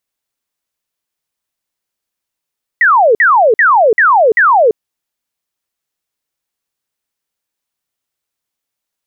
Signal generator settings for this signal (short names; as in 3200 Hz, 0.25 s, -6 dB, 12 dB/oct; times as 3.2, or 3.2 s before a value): burst of laser zaps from 2000 Hz, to 410 Hz, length 0.34 s sine, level -5 dB, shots 5, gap 0.05 s